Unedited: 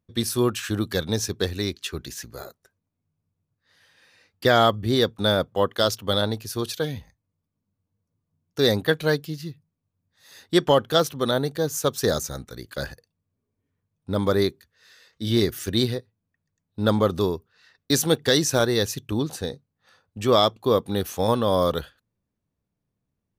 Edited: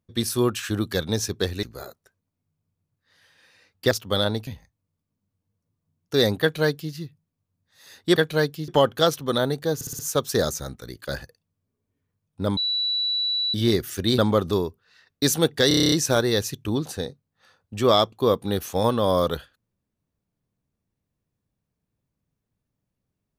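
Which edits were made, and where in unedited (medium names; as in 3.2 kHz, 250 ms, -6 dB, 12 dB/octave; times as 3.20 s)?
1.63–2.22 s: delete
4.50–5.88 s: delete
6.44–6.92 s: delete
8.86–9.38 s: copy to 10.61 s
11.68 s: stutter 0.06 s, 5 plays
14.26–15.23 s: bleep 3.94 kHz -21.5 dBFS
15.87–16.86 s: delete
18.36 s: stutter 0.03 s, 9 plays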